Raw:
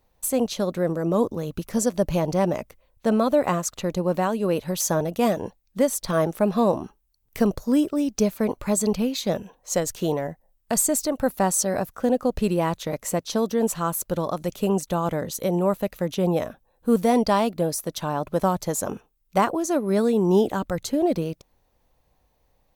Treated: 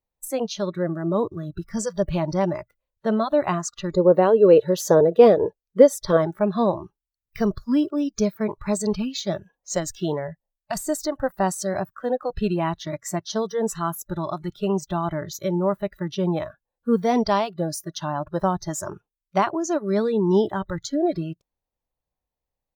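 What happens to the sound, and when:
3.94–6.17 bell 450 Hz +15 dB
whole clip: spectral noise reduction 21 dB; de-esser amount 45%

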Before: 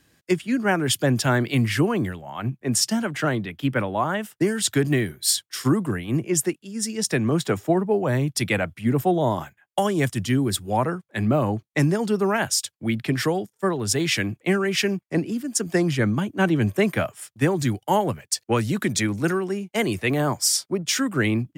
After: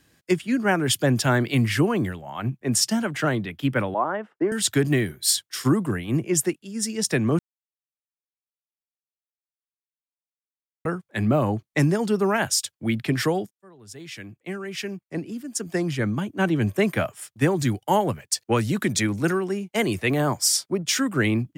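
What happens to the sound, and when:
3.94–4.52 Butterworth band-pass 650 Hz, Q 0.53
7.39–10.85 mute
13.51–17.17 fade in

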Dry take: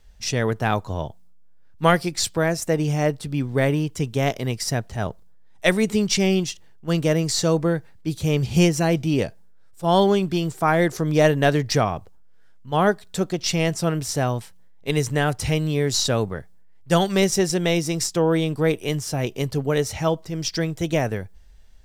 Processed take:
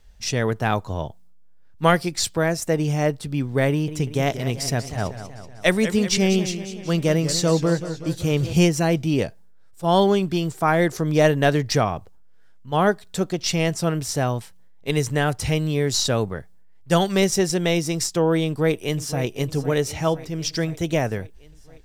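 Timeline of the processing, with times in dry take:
3.69–8.53 warbling echo 0.189 s, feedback 59%, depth 146 cents, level -11.5 dB
18.46–19.22 echo throw 0.51 s, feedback 65%, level -13 dB

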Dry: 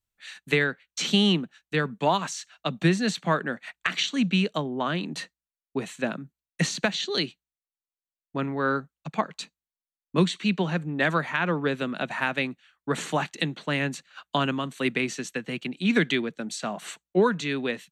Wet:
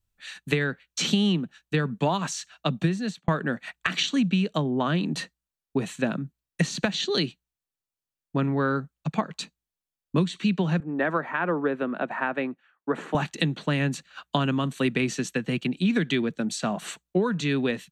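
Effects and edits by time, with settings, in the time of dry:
2.66–3.28 fade out
10.8–13.15 three-band isolator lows -23 dB, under 240 Hz, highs -20 dB, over 2000 Hz
whole clip: low shelf 210 Hz +10.5 dB; notch 2100 Hz, Q 17; compressor 6:1, threshold -22 dBFS; gain +2 dB

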